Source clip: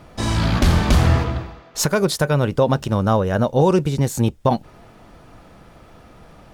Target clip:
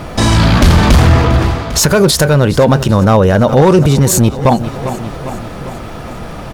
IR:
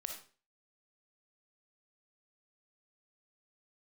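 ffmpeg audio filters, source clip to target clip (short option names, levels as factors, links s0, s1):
-af "asoftclip=type=hard:threshold=0.282,aecho=1:1:400|800|1200|1600|2000:0.0891|0.0526|0.031|0.0183|0.0108,alimiter=level_in=10:limit=0.891:release=50:level=0:latency=1,volume=0.891"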